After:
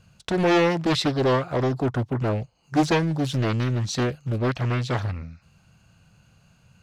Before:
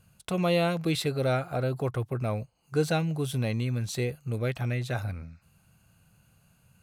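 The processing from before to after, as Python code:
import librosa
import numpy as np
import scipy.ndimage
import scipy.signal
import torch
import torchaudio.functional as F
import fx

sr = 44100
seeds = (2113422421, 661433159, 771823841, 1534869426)

y = fx.high_shelf_res(x, sr, hz=8000.0, db=-11.5, q=1.5)
y = fx.doppler_dist(y, sr, depth_ms=0.82)
y = y * 10.0 ** (5.5 / 20.0)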